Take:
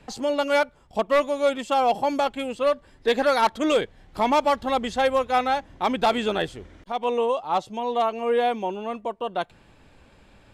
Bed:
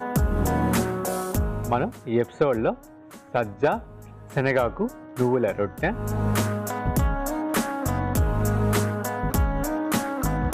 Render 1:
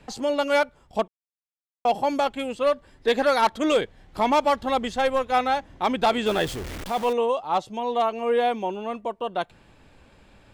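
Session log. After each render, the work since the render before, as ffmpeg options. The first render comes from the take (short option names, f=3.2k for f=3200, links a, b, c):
-filter_complex "[0:a]asettb=1/sr,asplit=3[a][b][c];[a]atrim=end=4.884[d];[b]atrim=start=4.88:end=5.32,asetpts=PTS-STARTPTS,afade=t=in:d=0.004:c=qsin,afade=t=out:st=0.436:d=0.004:c=qsin,aeval=exprs='if(lt(val(0),0),0.708*val(0),val(0))':c=same[e];[c]atrim=start=5.316[f];[d][e]acrossfade=d=0.004:c1=hsin:c2=qsin[g];[g][f]acrossfade=d=0.004:c1=qsin:c2=hsin,asettb=1/sr,asplit=3[h][i][j];[h]atrim=end=6.264[k];[i]atrim=start=6.26:end=7.13,asetpts=PTS-STARTPTS,afade=t=in:d=0.004:c=qsin,afade=t=out:st=0.866:d=0.004:c=qsin,aeval=exprs='val(0)+0.5*0.0316*sgn(val(0))':c=same[l];[j]atrim=start=7.126[m];[k][l]acrossfade=d=0.004:c1=hsin:c2=qsin[n];[n][m]acrossfade=d=0.004:c1=qsin:c2=hsin,asplit=3[o][p][q];[o]atrim=end=1.08,asetpts=PTS-STARTPTS,afade=t=out:st=1.076:d=0.004:c=hsin[r];[p]atrim=start=1.08:end=1.85,asetpts=PTS-STARTPTS,volume=0[s];[q]atrim=start=1.85,asetpts=PTS-STARTPTS,afade=t=in:d=0.004:c=hsin[t];[r][s][t]concat=n=3:v=0:a=1"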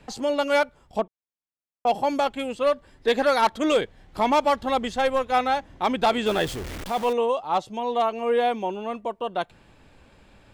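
-filter_complex "[0:a]asettb=1/sr,asplit=3[a][b][c];[a]atrim=end=0.994[d];[b]atrim=start=0.99:end=1.87,asetpts=PTS-STARTPTS,afade=t=in:d=0.004:c=qsin,afade=t=out:st=0.876:d=0.004:c=qsin,highshelf=f=2.1k:g=-11.5[e];[c]atrim=start=1.866[f];[d][e]acrossfade=d=0.004:c1=hsin:c2=qsin[g];[g][f]acrossfade=d=0.004:c1=qsin:c2=hsin"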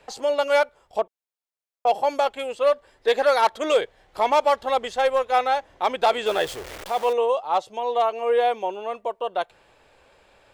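-af "lowshelf=f=340:t=q:w=1.5:g=-10.5"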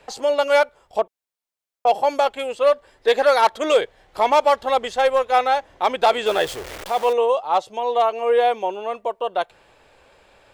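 -af "volume=3dB"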